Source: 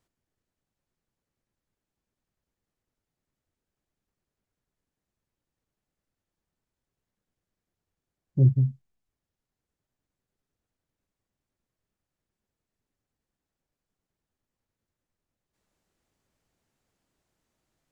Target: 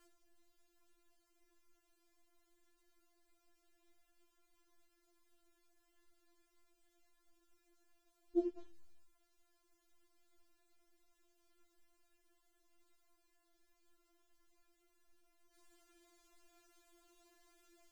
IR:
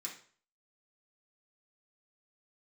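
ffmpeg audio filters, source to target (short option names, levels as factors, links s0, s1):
-af "acompressor=threshold=0.0501:ratio=12,afftfilt=real='re*4*eq(mod(b,16),0)':imag='im*4*eq(mod(b,16),0)':win_size=2048:overlap=0.75,volume=3.98"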